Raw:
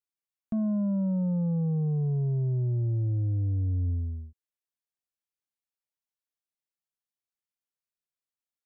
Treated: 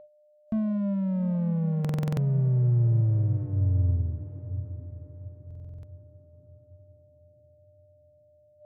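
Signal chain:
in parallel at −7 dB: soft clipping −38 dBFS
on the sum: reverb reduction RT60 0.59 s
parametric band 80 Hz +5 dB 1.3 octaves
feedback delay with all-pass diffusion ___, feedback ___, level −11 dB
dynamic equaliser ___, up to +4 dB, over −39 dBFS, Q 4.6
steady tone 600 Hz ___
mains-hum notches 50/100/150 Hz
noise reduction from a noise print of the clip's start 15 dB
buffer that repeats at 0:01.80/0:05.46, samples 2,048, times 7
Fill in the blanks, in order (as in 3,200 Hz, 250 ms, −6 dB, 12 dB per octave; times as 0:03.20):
753 ms, 44%, 120 Hz, −43 dBFS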